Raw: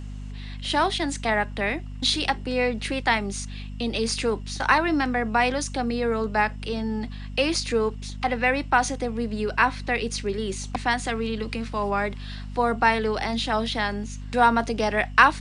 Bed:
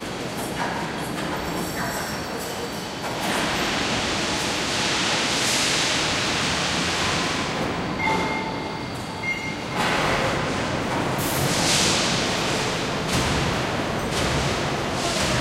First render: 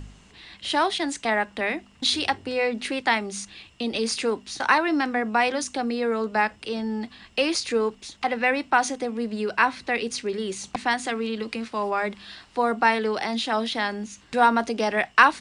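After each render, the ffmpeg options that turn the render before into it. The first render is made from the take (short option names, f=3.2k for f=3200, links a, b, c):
-af "bandreject=f=50:t=h:w=4,bandreject=f=100:t=h:w=4,bandreject=f=150:t=h:w=4,bandreject=f=200:t=h:w=4,bandreject=f=250:t=h:w=4"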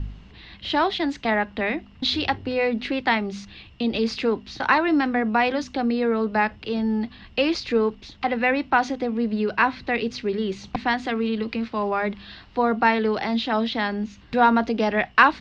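-af "lowpass=f=4.6k:w=0.5412,lowpass=f=4.6k:w=1.3066,lowshelf=f=200:g=12"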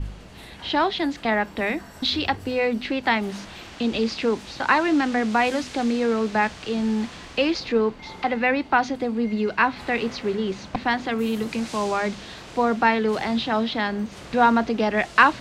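-filter_complex "[1:a]volume=-18.5dB[a];[0:a][a]amix=inputs=2:normalize=0"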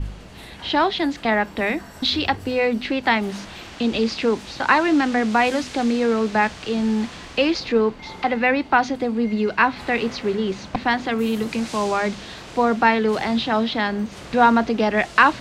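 -af "volume=2.5dB,alimiter=limit=-2dB:level=0:latency=1"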